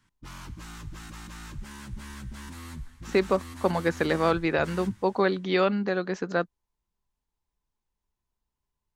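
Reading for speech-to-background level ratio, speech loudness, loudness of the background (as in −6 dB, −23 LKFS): 16.0 dB, −26.5 LKFS, −42.5 LKFS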